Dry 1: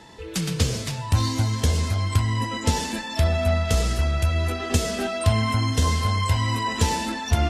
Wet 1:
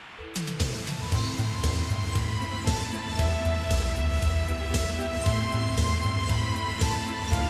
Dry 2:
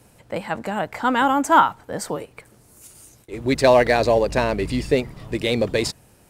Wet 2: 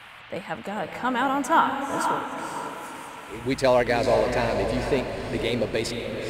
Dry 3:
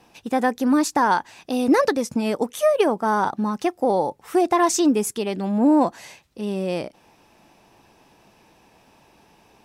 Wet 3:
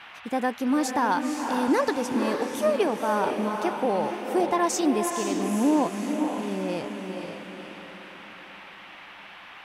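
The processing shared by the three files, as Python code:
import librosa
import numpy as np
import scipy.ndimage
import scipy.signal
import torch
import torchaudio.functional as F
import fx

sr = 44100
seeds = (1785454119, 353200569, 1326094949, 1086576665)

y = fx.echo_diffused(x, sr, ms=501, feedback_pct=45, wet_db=-5.0)
y = fx.dmg_noise_band(y, sr, seeds[0], low_hz=650.0, high_hz=3000.0, level_db=-40.0)
y = y * 10.0 ** (-5.5 / 20.0)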